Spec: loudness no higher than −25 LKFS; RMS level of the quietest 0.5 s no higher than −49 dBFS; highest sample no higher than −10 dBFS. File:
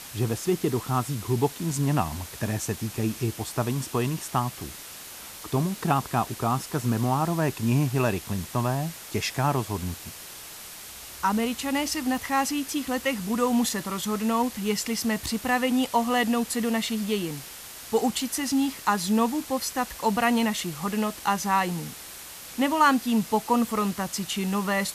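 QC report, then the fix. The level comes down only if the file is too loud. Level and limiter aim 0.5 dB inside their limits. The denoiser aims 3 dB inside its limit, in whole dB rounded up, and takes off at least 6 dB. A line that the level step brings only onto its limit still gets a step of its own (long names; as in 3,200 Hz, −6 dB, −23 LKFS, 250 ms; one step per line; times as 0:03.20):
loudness −26.5 LKFS: in spec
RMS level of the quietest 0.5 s −42 dBFS: out of spec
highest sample −7.5 dBFS: out of spec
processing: broadband denoise 10 dB, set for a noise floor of −42 dBFS
brickwall limiter −10.5 dBFS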